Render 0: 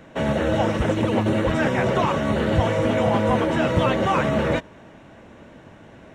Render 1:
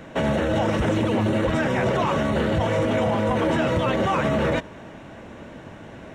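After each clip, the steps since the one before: peak limiter -19 dBFS, peak gain reduction 11.5 dB; trim +5 dB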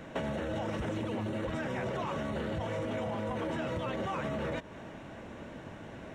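compression 6:1, threshold -27 dBFS, peak gain reduction 9 dB; trim -5 dB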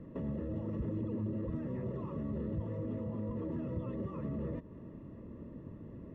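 boxcar filter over 58 samples; trim +1 dB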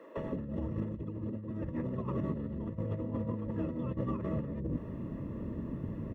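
bands offset in time highs, lows 170 ms, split 440 Hz; compressor with a negative ratio -41 dBFS, ratio -0.5; trim +6.5 dB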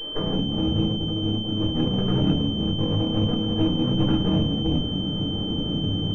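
comb filter that takes the minimum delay 0.51 ms; reverberation RT60 0.35 s, pre-delay 5 ms, DRR 1 dB; class-D stage that switches slowly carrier 3.1 kHz; trim +7.5 dB

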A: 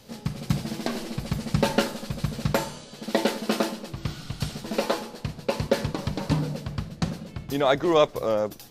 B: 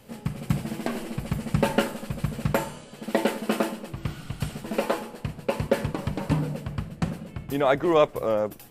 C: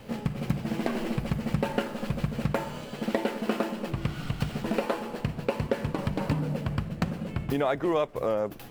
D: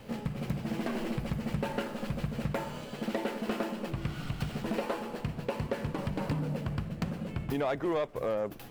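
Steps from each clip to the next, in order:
high-order bell 4.8 kHz -8.5 dB 1.1 oct
median filter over 5 samples; compression 4:1, threshold -32 dBFS, peak gain reduction 15.5 dB; trim +6.5 dB
saturation -20.5 dBFS, distortion -14 dB; trim -2.5 dB

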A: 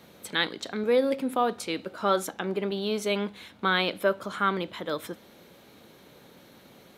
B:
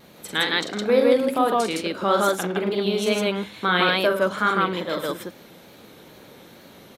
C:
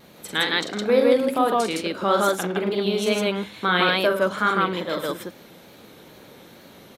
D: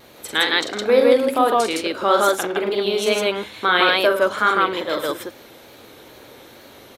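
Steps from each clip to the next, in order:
on a send: loudspeakers at several distances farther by 15 m -5 dB, 36 m -11 dB, 55 m 0 dB; on the sum: vibrato 2.3 Hz 50 cents; trim +2.5 dB
no audible change
peaking EQ 180 Hz -14.5 dB 0.51 oct; trim +4 dB

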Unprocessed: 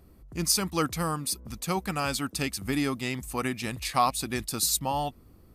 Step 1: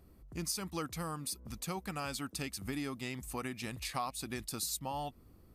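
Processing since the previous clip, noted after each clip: compression 2.5:1, threshold -32 dBFS, peak gain reduction 9.5 dB; trim -5 dB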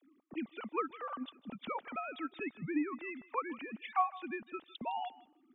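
formants replaced by sine waves; transient shaper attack +5 dB, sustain -2 dB; thinning echo 157 ms, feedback 16%, high-pass 490 Hz, level -18 dB; trim -1.5 dB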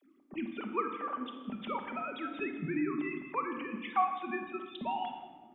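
reverberation RT60 1.5 s, pre-delay 5 ms, DRR 3.5 dB; trim +1.5 dB

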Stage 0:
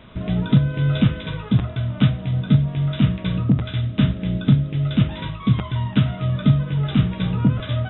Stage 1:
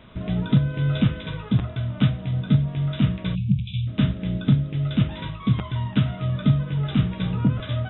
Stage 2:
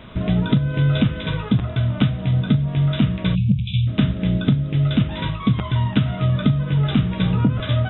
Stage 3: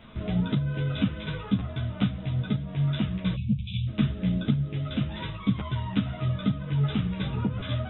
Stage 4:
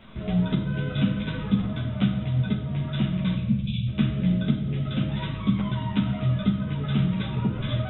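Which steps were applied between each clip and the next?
spectral selection erased 3.35–3.87 s, 220–2200 Hz; trim -3 dB
compression 6:1, threshold -21 dBFS, peak gain reduction 9 dB; trim +7.5 dB
three-phase chorus; trim -5 dB
simulated room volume 1100 m³, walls mixed, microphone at 1.1 m

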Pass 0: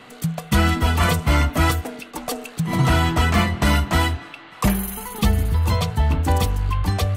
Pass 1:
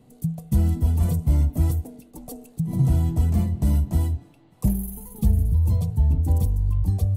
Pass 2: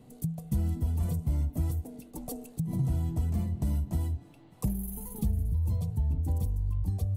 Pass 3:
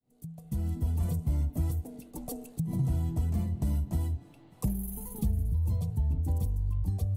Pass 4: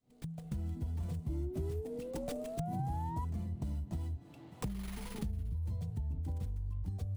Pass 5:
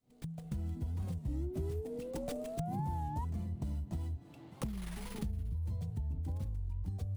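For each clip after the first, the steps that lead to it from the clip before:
FFT filter 130 Hz 0 dB, 850 Hz -17 dB, 1.3 kHz -30 dB, 3 kHz -26 dB, 11 kHz -7 dB
compression 2:1, threshold -33 dBFS, peak gain reduction 10.5 dB
fade-in on the opening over 0.87 s
compression 3:1, threshold -42 dBFS, peak gain reduction 13.5 dB; painted sound rise, 1.29–3.25 s, 320–1000 Hz -46 dBFS; sliding maximum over 3 samples; trim +3 dB
warped record 33 1/3 rpm, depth 160 cents

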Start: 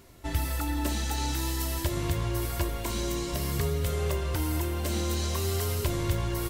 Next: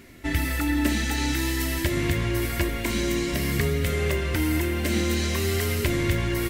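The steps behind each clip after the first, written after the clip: graphic EQ 250/1000/2000 Hz +9/-5/+12 dB; trim +2 dB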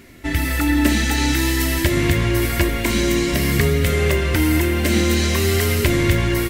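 level rider gain up to 3.5 dB; trim +3.5 dB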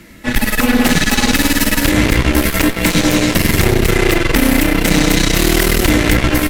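frequency shift -47 Hz; Chebyshev shaper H 5 -11 dB, 8 -8 dB, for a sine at -2 dBFS; trim -2.5 dB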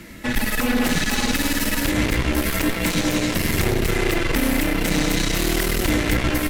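peak limiter -12 dBFS, peak gain reduction 10 dB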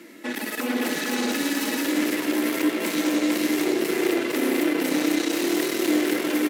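ladder high-pass 270 Hz, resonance 50%; delay 454 ms -3 dB; trim +3 dB

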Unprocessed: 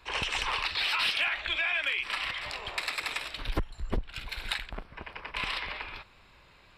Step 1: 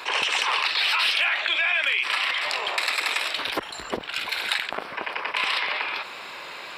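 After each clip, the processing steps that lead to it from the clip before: high-pass 410 Hz 12 dB/octave; level flattener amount 50%; trim +5 dB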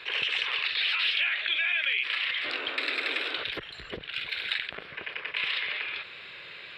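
painted sound noise, 2.44–3.44 s, 250–1600 Hz -29 dBFS; FFT filter 150 Hz 0 dB, 240 Hz -12 dB, 450 Hz -7 dB, 900 Hz -20 dB, 1.7 kHz -5 dB, 3.6 kHz -3 dB, 6 kHz -21 dB, 12 kHz -23 dB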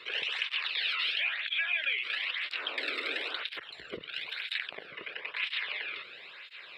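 cancelling through-zero flanger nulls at 1 Hz, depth 1.3 ms; trim -1 dB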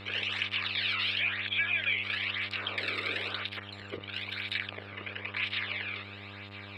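mains buzz 100 Hz, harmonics 28, -48 dBFS -5 dB/octave; small resonant body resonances 1.2/2.3 kHz, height 6 dB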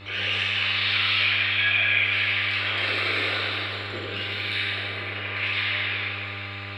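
plate-style reverb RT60 2.8 s, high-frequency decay 0.8×, DRR -8.5 dB

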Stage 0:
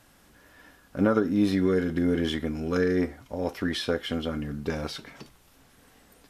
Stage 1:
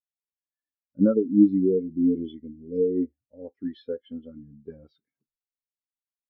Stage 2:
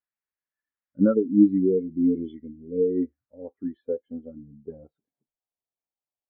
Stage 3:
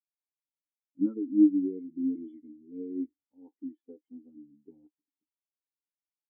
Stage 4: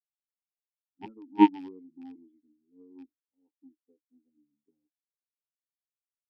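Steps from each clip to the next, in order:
time-frequency box 1.14–3.10 s, 690–1900 Hz -29 dB; elliptic low-pass 7.5 kHz; spectral contrast expander 2.5:1; trim +6 dB
low-pass sweep 1.8 kHz -> 750 Hz, 3.07–3.97 s
vowel filter u; trim -1.5 dB
rattle on loud lows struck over -34 dBFS, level -33 dBFS; Chebyshev shaper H 3 -8 dB, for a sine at -11 dBFS; three bands expanded up and down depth 40%; trim +1.5 dB

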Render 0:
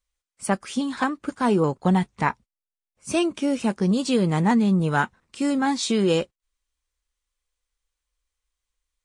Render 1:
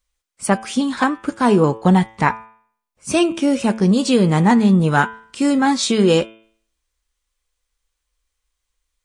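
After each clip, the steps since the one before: de-hum 111.1 Hz, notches 33; trim +6.5 dB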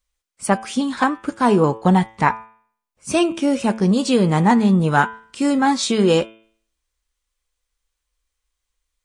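dynamic bell 870 Hz, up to +3 dB, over -25 dBFS, Q 1.1; trim -2 dB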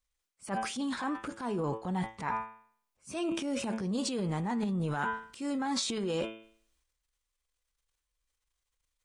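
reverse; compression 6:1, threshold -22 dBFS, peak gain reduction 11.5 dB; reverse; transient shaper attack -4 dB, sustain +9 dB; trim -8 dB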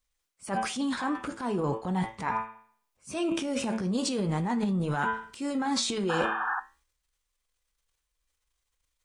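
painted sound noise, 6.09–6.60 s, 720–1800 Hz -34 dBFS; flange 0.4 Hz, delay 8.2 ms, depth 9.8 ms, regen -73%; trim +8 dB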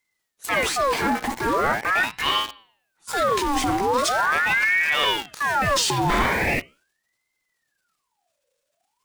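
in parallel at -7 dB: companded quantiser 2-bit; on the sum: ring modulator with a swept carrier 1.3 kHz, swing 60%, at 0.41 Hz; trim +6.5 dB

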